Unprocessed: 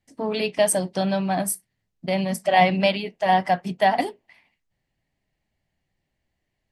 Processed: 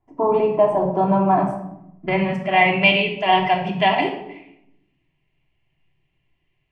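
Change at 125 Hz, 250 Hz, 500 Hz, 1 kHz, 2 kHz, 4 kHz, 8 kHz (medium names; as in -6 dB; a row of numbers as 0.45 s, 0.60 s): +3.5 dB, +3.5 dB, +3.5 dB, +3.0 dB, +7.0 dB, +4.5 dB, under -30 dB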